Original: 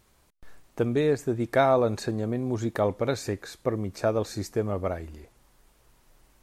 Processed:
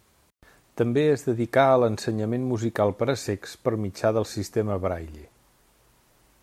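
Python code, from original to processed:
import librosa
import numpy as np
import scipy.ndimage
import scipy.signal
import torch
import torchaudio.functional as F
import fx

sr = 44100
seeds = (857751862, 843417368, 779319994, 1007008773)

y = scipy.signal.sosfilt(scipy.signal.butter(2, 55.0, 'highpass', fs=sr, output='sos'), x)
y = y * 10.0 ** (2.5 / 20.0)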